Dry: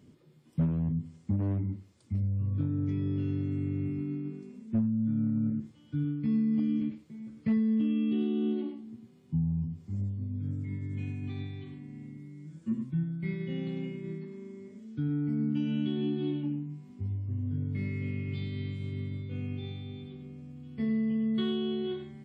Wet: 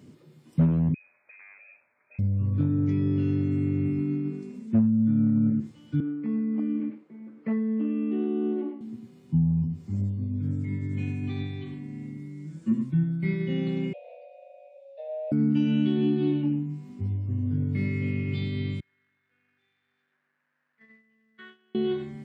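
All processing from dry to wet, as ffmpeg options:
ffmpeg -i in.wav -filter_complex "[0:a]asettb=1/sr,asplit=3[link_01][link_02][link_03];[link_01]atrim=end=0.944[link_04];[link_02]atrim=start=0.94:end=2.19,asetpts=PTS-STARTPTS,afade=type=in:duration=0.004:curve=qsin,afade=type=out:start_time=1.246:duration=0.004:curve=qsin,highpass=730,acompressor=threshold=-55dB:ratio=5:attack=3.2:release=140:knee=1:detection=peak,lowpass=frequency=2300:width_type=q:width=0.5098,lowpass=frequency=2300:width_type=q:width=0.6013,lowpass=frequency=2300:width_type=q:width=0.9,lowpass=frequency=2300:width_type=q:width=2.563,afreqshift=-2700[link_05];[link_03]atrim=start=2.186[link_06];[link_04][link_05]acrossfade=duration=0.004:curve1=hsin:curve2=qsin[link_07];[link_07][link_06]acrossfade=duration=0.004:curve1=qsin:curve2=hsin,asettb=1/sr,asplit=3[link_08][link_09][link_10];[link_08]atrim=end=6.004[link_11];[link_09]atrim=start=6:end=8.81,asetpts=PTS-STARTPTS,afade=type=in:duration=0.004:curve=qsin,afade=type=out:start_time=2.806:duration=0.004:curve=qsin,highpass=140,acrossover=split=240 2100:gain=0.0708 1 0.0708[link_12][link_13][link_14];[link_12][link_13][link_14]amix=inputs=3:normalize=0[link_15];[link_10]atrim=start=8.806[link_16];[link_11][link_15]acrossfade=duration=0.004:curve1=hsin:curve2=qsin[link_17];[link_17][link_16]acrossfade=duration=0.004:curve1=qsin:curve2=hsin,asettb=1/sr,asplit=3[link_18][link_19][link_20];[link_18]atrim=end=13.934[link_21];[link_19]atrim=start=13.93:end=15.32,asetpts=PTS-STARTPTS,afade=type=in:duration=0.004:curve=qsin,afade=type=out:start_time=1.386:duration=0.004:curve=qsin,aeval=exprs='clip(val(0),-1,0.0112)':channel_layout=same,asplit=3[link_22][link_23][link_24];[link_22]bandpass=frequency=270:width_type=q:width=8,volume=0dB[link_25];[link_23]bandpass=frequency=2290:width_type=q:width=8,volume=-6dB[link_26];[link_24]bandpass=frequency=3010:width_type=q:width=8,volume=-9dB[link_27];[link_25][link_26][link_27]amix=inputs=3:normalize=0,afreqshift=330[link_28];[link_20]atrim=start=15.316[link_29];[link_21][link_28]acrossfade=duration=0.004:curve1=hsin:curve2=qsin[link_30];[link_30][link_29]acrossfade=duration=0.004:curve1=qsin:curve2=hsin,asettb=1/sr,asplit=3[link_31][link_32][link_33];[link_31]atrim=end=18.804[link_34];[link_32]atrim=start=18.8:end=21.75,asetpts=PTS-STARTPTS,afade=type=in:duration=0.004:curve=qsin,afade=type=out:start_time=2.946:duration=0.004:curve=qsin,aeval=exprs='val(0)*gte(abs(val(0)),0.00447)':channel_layout=same,bandpass=frequency=1700:width_type=q:width=5.1,agate=range=-16dB:threshold=-55dB:ratio=16:release=100:detection=peak[link_35];[link_33]atrim=start=21.746[link_36];[link_34][link_35]acrossfade=duration=0.004:curve1=hsin:curve2=qsin[link_37];[link_37][link_36]acrossfade=duration=0.004:curve1=qsin:curve2=hsin,highpass=94,bandreject=frequency=3300:width=24,volume=7dB" out.wav

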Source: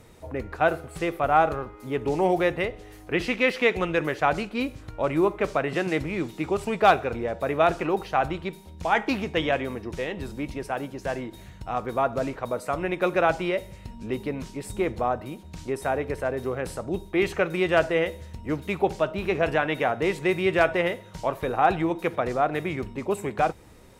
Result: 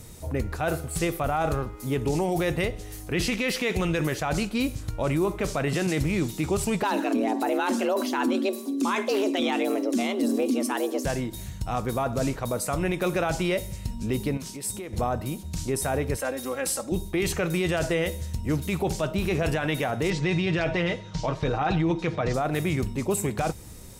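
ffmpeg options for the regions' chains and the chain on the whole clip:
ffmpeg -i in.wav -filter_complex "[0:a]asettb=1/sr,asplit=3[link_01][link_02][link_03];[link_01]atrim=end=6.834[link_04];[link_02]atrim=start=6.83:end=11.05,asetpts=PTS-STARTPTS,afade=type=in:duration=0.004:curve=qsin,afade=type=out:start_time=4.216:duration=0.004:curve=qsin,lowshelf=frequency=150:gain=11.5,aphaser=in_gain=1:out_gain=1:delay=1:decay=0.35:speed=1.7:type=sinusoidal,afreqshift=200[link_05];[link_03]atrim=start=11.046[link_06];[link_04][link_05]acrossfade=duration=0.004:curve1=hsin:curve2=qsin[link_07];[link_07][link_06]acrossfade=duration=0.004:curve1=qsin:curve2=hsin,asettb=1/sr,asplit=3[link_08][link_09][link_10];[link_08]atrim=end=14.374[link_11];[link_09]atrim=start=14.37:end=14.93,asetpts=PTS-STARTPTS,afade=type=in:duration=0.004:curve=qsin,afade=type=out:start_time=0.556:duration=0.004:curve=qsin,highpass=frequency=260:poles=1,bandreject=frequency=7100:width=23,acompressor=threshold=-39dB:ratio=3:attack=3.2:release=140:knee=1:detection=peak[link_12];[link_10]atrim=start=14.926[link_13];[link_11][link_12]acrossfade=duration=0.004:curve1=hsin:curve2=qsin[link_14];[link_14][link_13]acrossfade=duration=0.004:curve1=qsin:curve2=hsin,asettb=1/sr,asplit=3[link_15][link_16][link_17];[link_15]atrim=end=16.164[link_18];[link_16]atrim=start=16.16:end=16.92,asetpts=PTS-STARTPTS,afade=type=in:duration=0.004:curve=qsin,afade=type=out:start_time=0.756:duration=0.004:curve=qsin,highpass=frequency=550:poles=1,aecho=1:1:3.7:0.71,atrim=end_sample=33516[link_19];[link_17]atrim=start=16.916[link_20];[link_18][link_19]acrossfade=duration=0.004:curve1=hsin:curve2=qsin[link_21];[link_21][link_20]acrossfade=duration=0.004:curve1=qsin:curve2=hsin,asettb=1/sr,asplit=3[link_22][link_23][link_24];[link_22]atrim=end=20.104[link_25];[link_23]atrim=start=20.1:end=22.34,asetpts=PTS-STARTPTS,afade=type=in:duration=0.004:curve=qsin,afade=type=out:start_time=2.236:duration=0.004:curve=qsin,lowpass=frequency=5600:width=0.5412,lowpass=frequency=5600:width=1.3066,aecho=1:1:6.5:0.47,atrim=end_sample=98784[link_26];[link_24]atrim=start=22.336[link_27];[link_25][link_26]acrossfade=duration=0.004:curve1=hsin:curve2=qsin[link_28];[link_28][link_27]acrossfade=duration=0.004:curve1=qsin:curve2=hsin,bass=frequency=250:gain=9,treble=frequency=4000:gain=15,alimiter=limit=-17dB:level=0:latency=1:release=12" out.wav

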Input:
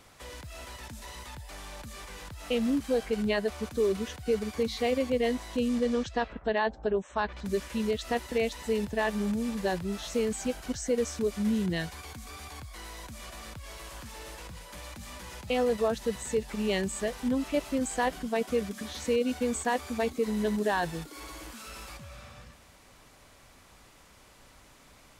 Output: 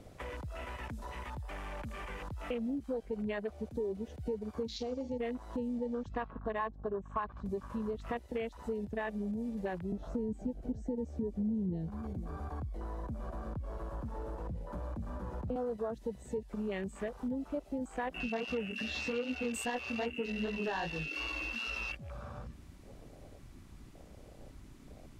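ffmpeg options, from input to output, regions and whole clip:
ffmpeg -i in.wav -filter_complex "[0:a]asettb=1/sr,asplit=3[link_01][link_02][link_03];[link_01]atrim=end=4.764[link_04];[link_02]atrim=start=4.76:end=5.18,asetpts=PTS-STARTPTS,afade=type=in:duration=0.004:curve=qsin,afade=type=out:start_time=0.416:duration=0.004:curve=qsin,lowpass=frequency=6000:width_type=q:width=3.4,equalizer=frequency=1100:width=0.58:gain=-9,asplit=2[link_05][link_06];[link_06]adelay=44,volume=-13.5dB[link_07];[link_05][link_07]amix=inputs=2:normalize=0,atrim=end_sample=18522[link_08];[link_03]atrim=start=5.176[link_09];[link_04][link_08]acrossfade=duration=0.004:curve1=hsin:curve2=qsin[link_10];[link_10][link_09]acrossfade=duration=0.004:curve1=qsin:curve2=hsin,asettb=1/sr,asplit=3[link_11][link_12][link_13];[link_11]atrim=end=6.044[link_14];[link_12]atrim=start=6.04:end=8.17,asetpts=PTS-STARTPTS,afade=type=in:duration=0.004:curve=qsin,afade=type=out:start_time=2.126:duration=0.004:curve=qsin,equalizer=frequency=1100:width=7.1:gain=15,aeval=exprs='val(0)+0.00708*(sin(2*PI*50*n/s)+sin(2*PI*2*50*n/s)/2+sin(2*PI*3*50*n/s)/3+sin(2*PI*4*50*n/s)/4+sin(2*PI*5*50*n/s)/5)':channel_layout=same[link_15];[link_13]atrim=start=8.166[link_16];[link_14][link_15]acrossfade=duration=0.004:curve1=hsin:curve2=qsin[link_17];[link_17][link_16]acrossfade=duration=0.004:curve1=qsin:curve2=hsin,asettb=1/sr,asplit=3[link_18][link_19][link_20];[link_18]atrim=end=9.924[link_21];[link_19]atrim=start=9.92:end=15.56,asetpts=PTS-STARTPTS,afade=type=in:duration=0.004:curve=qsin,afade=type=out:start_time=5.636:duration=0.004:curve=qsin,tiltshelf=frequency=1300:gain=7.5,acrossover=split=380|3000[link_22][link_23][link_24];[link_23]acompressor=threshold=-39dB:ratio=4:attack=3.2:release=140:knee=2.83:detection=peak[link_25];[link_22][link_25][link_24]amix=inputs=3:normalize=0,aecho=1:1:493:0.106,atrim=end_sample=248724[link_26];[link_20]atrim=start=15.556[link_27];[link_21][link_26]acrossfade=duration=0.004:curve1=hsin:curve2=qsin[link_28];[link_28][link_27]acrossfade=duration=0.004:curve1=qsin:curve2=hsin,asettb=1/sr,asplit=3[link_29][link_30][link_31];[link_29]atrim=end=18.144[link_32];[link_30]atrim=start=18.14:end=21.95,asetpts=PTS-STARTPTS,afade=type=in:duration=0.004:curve=qsin,afade=type=out:start_time=3.806:duration=0.004:curve=qsin,aeval=exprs='0.15*sin(PI/2*1.41*val(0)/0.15)':channel_layout=same,aeval=exprs='val(0)+0.0355*sin(2*PI*2700*n/s)':channel_layout=same,flanger=delay=16:depth=6.1:speed=2.5[link_33];[link_31]atrim=start=21.946[link_34];[link_32][link_33]acrossfade=duration=0.004:curve1=hsin:curve2=qsin[link_35];[link_35][link_34]acrossfade=duration=0.004:curve1=qsin:curve2=hsin,acompressor=threshold=-48dB:ratio=3,afwtdn=0.00251,volume=8dB" out.wav

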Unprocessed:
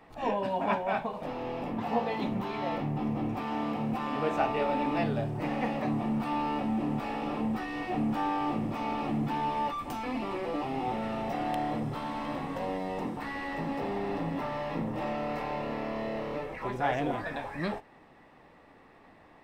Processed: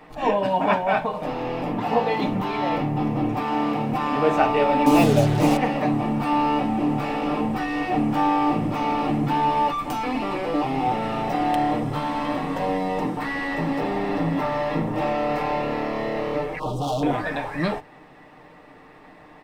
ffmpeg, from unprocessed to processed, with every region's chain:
ffmpeg -i in.wav -filter_complex "[0:a]asettb=1/sr,asplit=3[link_01][link_02][link_03];[link_01]atrim=end=4.864[link_04];[link_02]atrim=start=4.86:end=5.57,asetpts=PTS-STARTPTS,afade=type=in:duration=0.004:curve=qsin,afade=type=out:start_time=0.706:duration=0.004:curve=qsin,equalizer=frequency=1700:width_type=o:width=0.45:gain=-13.5,acontrast=32,acrusher=bits=5:mix=0:aa=0.5[link_05];[link_03]atrim=start=5.566[link_06];[link_04][link_05]acrossfade=duration=0.004:curve1=hsin:curve2=qsin[link_07];[link_07][link_06]acrossfade=duration=0.004:curve1=qsin:curve2=hsin,asettb=1/sr,asplit=3[link_08][link_09][link_10];[link_08]atrim=end=16.594[link_11];[link_09]atrim=start=16.59:end=17.03,asetpts=PTS-STARTPTS,afade=type=in:duration=0.004:curve=qsin,afade=type=out:start_time=0.436:duration=0.004:curve=qsin,aecho=1:1:6.5:0.88,atrim=end_sample=19404,volume=32dB,asoftclip=hard,volume=-32dB,asuperstop=centerf=1900:order=8:qfactor=1[link_12];[link_10]atrim=start=17.026[link_13];[link_11][link_12]acrossfade=duration=0.004:curve1=hsin:curve2=qsin[link_14];[link_14][link_13]acrossfade=duration=0.004:curve1=qsin:curve2=hsin,bandreject=frequency=50:width_type=h:width=6,bandreject=frequency=100:width_type=h:width=6,bandreject=frequency=150:width_type=h:width=6,aecho=1:1:6.6:0.41,volume=8dB" out.wav

